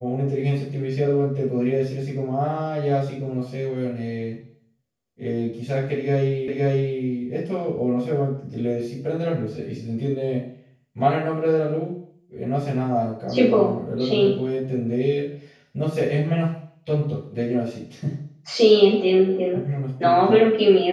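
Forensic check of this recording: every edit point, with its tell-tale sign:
6.48 repeat of the last 0.52 s

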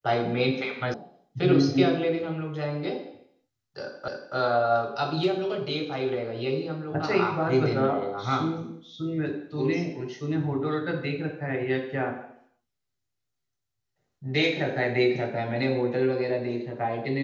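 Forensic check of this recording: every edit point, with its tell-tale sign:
0.94 sound cut off
4.08 repeat of the last 0.28 s

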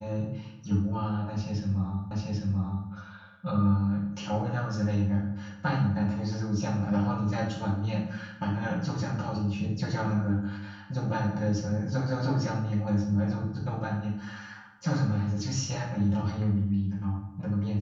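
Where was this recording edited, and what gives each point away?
2.11 repeat of the last 0.79 s

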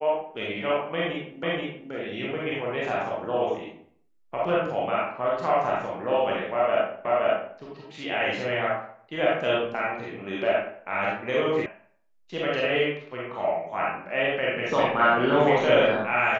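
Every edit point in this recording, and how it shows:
1.43 repeat of the last 0.48 s
7.05 repeat of the last 0.52 s
11.66 sound cut off

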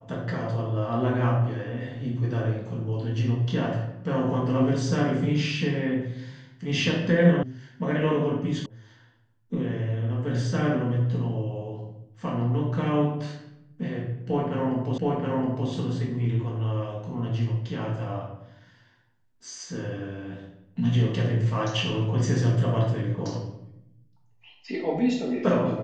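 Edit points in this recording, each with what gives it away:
7.43 sound cut off
8.66 sound cut off
14.98 repeat of the last 0.72 s

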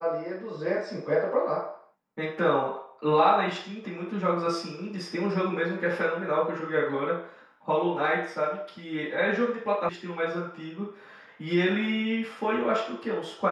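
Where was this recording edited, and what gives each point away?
9.89 sound cut off

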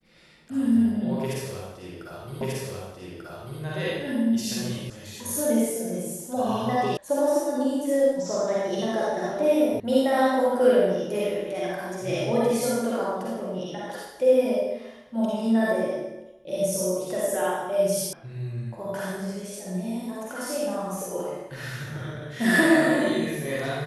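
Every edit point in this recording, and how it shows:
2.41 repeat of the last 1.19 s
4.9 sound cut off
6.97 sound cut off
9.8 sound cut off
18.13 sound cut off

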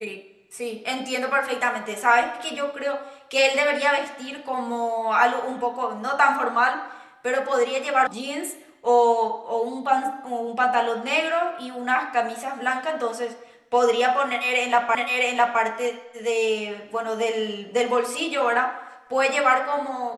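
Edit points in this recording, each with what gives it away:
8.07 sound cut off
14.95 repeat of the last 0.66 s

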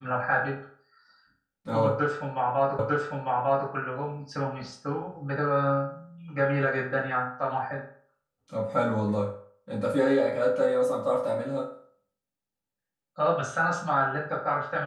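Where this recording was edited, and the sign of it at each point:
2.79 repeat of the last 0.9 s

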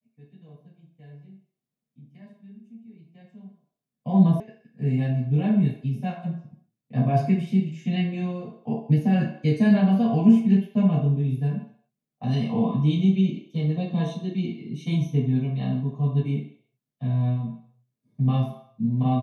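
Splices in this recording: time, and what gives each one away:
4.4 sound cut off

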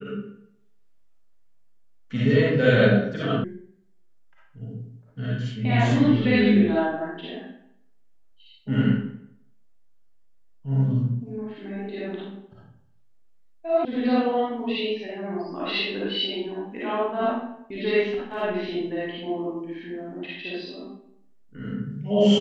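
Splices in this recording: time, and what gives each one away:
3.44 sound cut off
13.85 sound cut off

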